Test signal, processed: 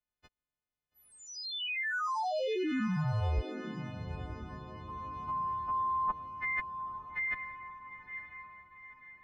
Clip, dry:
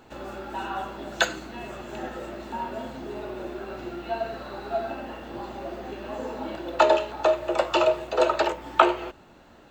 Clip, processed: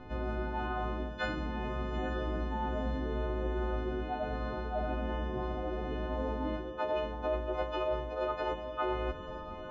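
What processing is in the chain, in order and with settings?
frequency quantiser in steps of 3 st; RIAA curve playback; reverse; compressor 8:1, threshold -30 dBFS; reverse; air absorption 220 m; diffused feedback echo 0.917 s, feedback 45%, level -9 dB

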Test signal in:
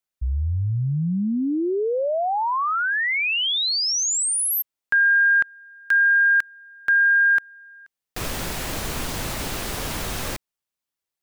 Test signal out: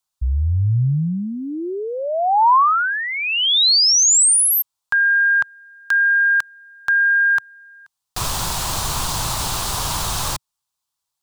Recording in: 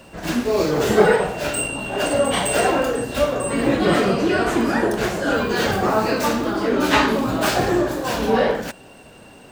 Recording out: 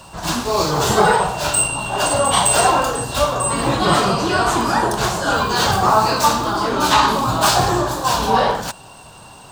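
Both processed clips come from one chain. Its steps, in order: graphic EQ 125/250/500/1000/2000/4000/8000 Hz +4/-8/-7/+10/-9/+5/+5 dB; maximiser +5.5 dB; gain -1.5 dB

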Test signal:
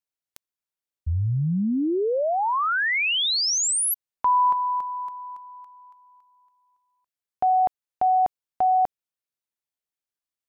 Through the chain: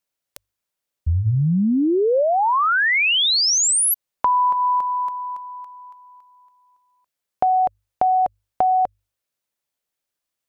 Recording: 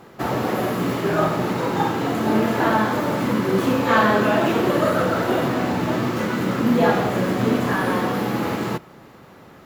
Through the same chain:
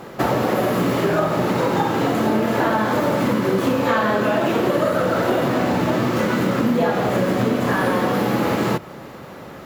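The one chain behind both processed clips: bell 560 Hz +4.5 dB 0.3 oct; notches 50/100 Hz; compressor, threshold -24 dBFS; gain +8 dB

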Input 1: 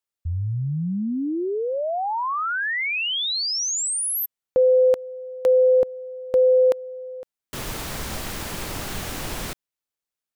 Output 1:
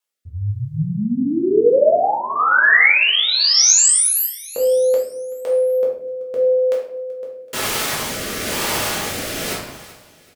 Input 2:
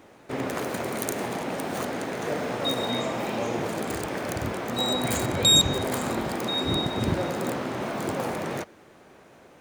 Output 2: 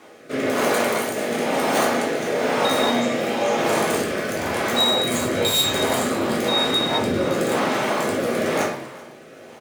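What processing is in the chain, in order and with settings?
in parallel at -3.5 dB: wrapped overs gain 11.5 dB; on the sum: limiter -16 dBFS; HPF 570 Hz 6 dB/oct; on a send: feedback echo 0.381 s, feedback 54%, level -20 dB; on the sum: shoebox room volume 130 m³, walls mixed, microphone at 1.4 m; rotary speaker horn 1 Hz; gain +4.5 dB

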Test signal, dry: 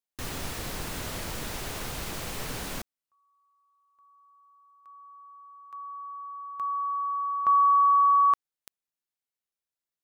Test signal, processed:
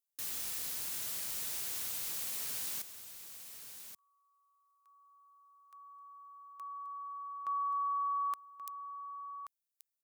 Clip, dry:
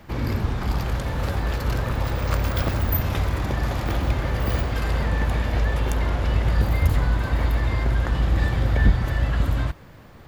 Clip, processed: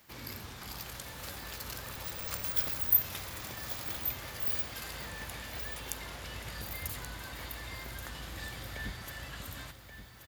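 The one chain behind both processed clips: HPF 110 Hz 6 dB/oct; pre-emphasis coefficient 0.9; on a send: echo 1.13 s -10.5 dB

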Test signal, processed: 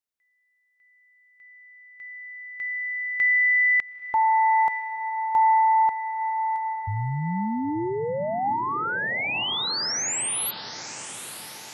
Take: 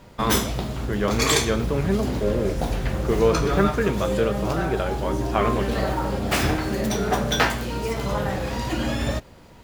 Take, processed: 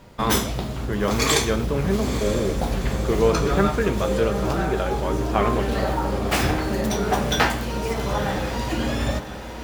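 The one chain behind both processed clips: dynamic EQ 820 Hz, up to +4 dB, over -35 dBFS, Q 7.2; diffused feedback echo 0.93 s, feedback 57%, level -11.5 dB

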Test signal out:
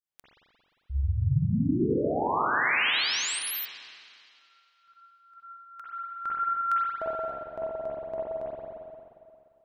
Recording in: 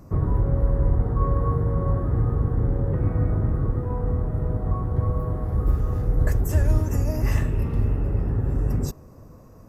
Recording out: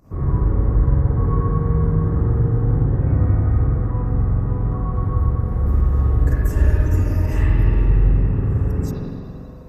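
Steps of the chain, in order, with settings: dynamic EQ 630 Hz, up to -5 dB, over -41 dBFS, Q 1.6; pump 124 bpm, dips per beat 1, -11 dB, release 90 ms; spring tank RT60 2.4 s, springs 44/58 ms, chirp 45 ms, DRR -8.5 dB; gain -4 dB

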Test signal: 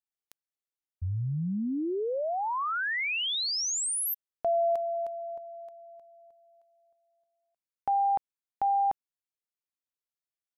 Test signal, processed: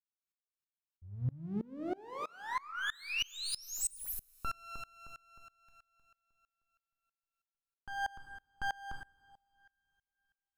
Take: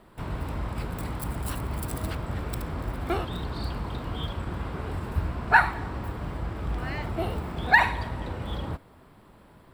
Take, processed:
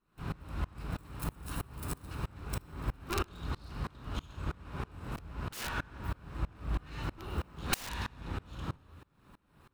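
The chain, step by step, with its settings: minimum comb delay 0.75 ms; two-slope reverb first 0.82 s, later 2.8 s, from -18 dB, DRR 5.5 dB; wrapped overs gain 18.5 dB; dB-ramp tremolo swelling 3.1 Hz, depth 27 dB

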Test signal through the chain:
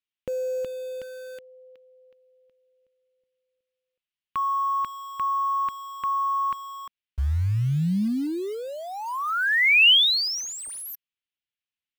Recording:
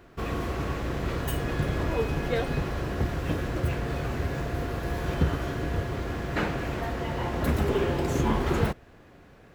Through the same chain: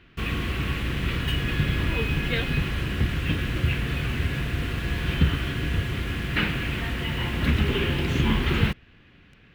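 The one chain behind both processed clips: EQ curve 210 Hz 0 dB, 670 Hz -13 dB, 2900 Hz +9 dB, 7700 Hz -14 dB; in parallel at -4.5 dB: bit-crush 7-bit

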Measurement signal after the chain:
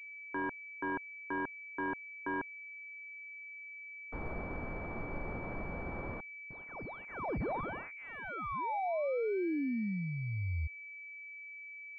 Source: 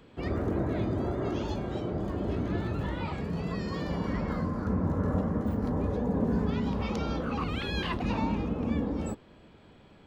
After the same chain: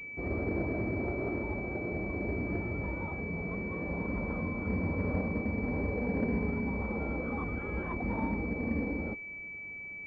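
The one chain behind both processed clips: dynamic EQ 140 Hz, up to -5 dB, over -44 dBFS, Q 1.6; pulse-width modulation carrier 2300 Hz; gain -2 dB

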